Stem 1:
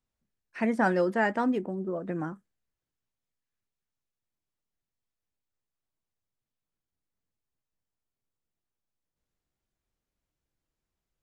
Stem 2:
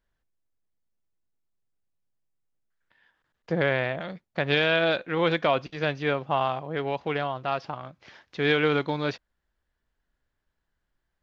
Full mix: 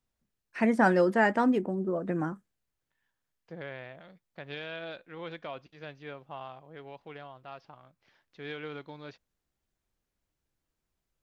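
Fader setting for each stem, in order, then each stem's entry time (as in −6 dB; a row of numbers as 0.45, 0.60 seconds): +2.0, −17.0 decibels; 0.00, 0.00 seconds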